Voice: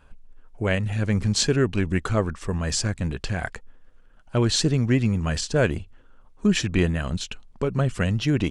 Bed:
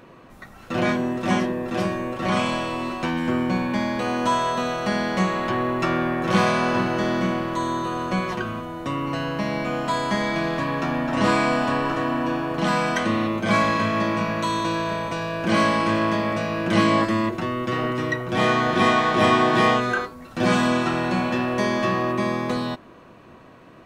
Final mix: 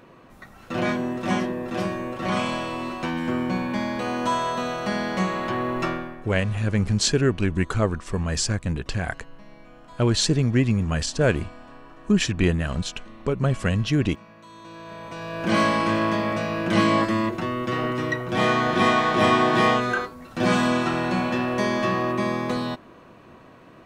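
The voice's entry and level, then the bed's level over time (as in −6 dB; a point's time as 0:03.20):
5.65 s, +0.5 dB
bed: 0:05.86 −2.5 dB
0:06.33 −23.5 dB
0:14.44 −23.5 dB
0:15.48 −1 dB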